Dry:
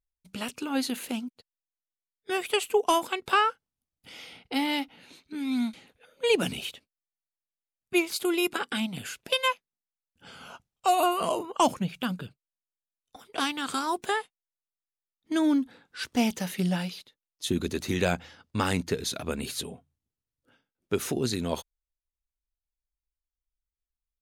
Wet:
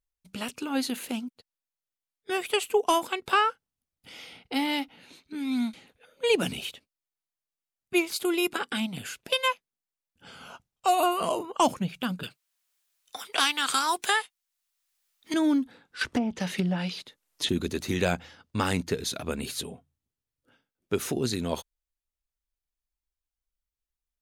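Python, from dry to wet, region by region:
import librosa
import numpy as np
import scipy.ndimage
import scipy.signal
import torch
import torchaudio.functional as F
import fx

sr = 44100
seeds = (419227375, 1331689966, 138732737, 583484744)

y = fx.chain(x, sr, fx.tilt_shelf(db=-9.0, hz=640.0),
    fx.band_squash(depth_pct=40), at=(12.23, 15.34))
y = fx.chain(y, sr, fx.env_lowpass_down(base_hz=870.0, full_db=-21.0),
    fx.high_shelf(hz=5800.0, db=11.5),
    fx.band_squash(depth_pct=100), at=(16.01, 17.49))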